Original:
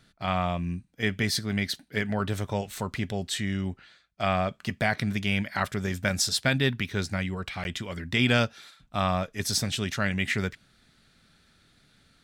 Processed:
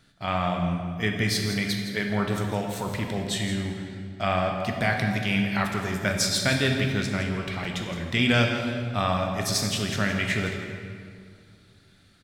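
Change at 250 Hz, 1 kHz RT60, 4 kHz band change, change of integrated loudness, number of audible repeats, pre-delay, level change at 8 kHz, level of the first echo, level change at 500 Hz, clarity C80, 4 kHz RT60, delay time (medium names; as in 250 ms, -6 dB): +3.0 dB, 2.1 s, +2.0 dB, +2.0 dB, 1, 11 ms, +1.5 dB, -11.0 dB, +2.5 dB, 4.5 dB, 1.5 s, 166 ms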